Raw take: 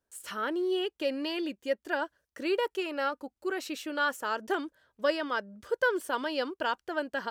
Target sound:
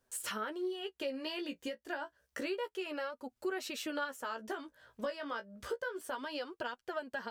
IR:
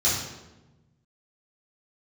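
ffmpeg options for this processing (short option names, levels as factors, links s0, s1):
-af "equalizer=f=320:w=7.1:g=-7.5,acompressor=threshold=0.00708:ratio=12,flanger=delay=7.9:depth=9.7:regen=23:speed=0.29:shape=sinusoidal,volume=3.35"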